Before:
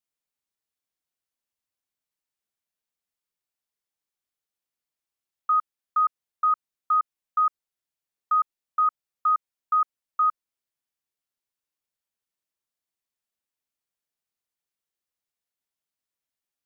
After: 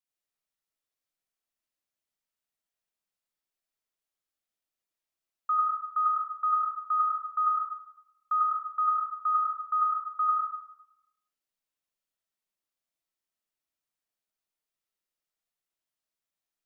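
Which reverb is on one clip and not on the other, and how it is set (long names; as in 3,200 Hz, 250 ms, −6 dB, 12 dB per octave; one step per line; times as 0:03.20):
comb and all-pass reverb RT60 0.85 s, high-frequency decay 0.75×, pre-delay 50 ms, DRR −3 dB
level −5.5 dB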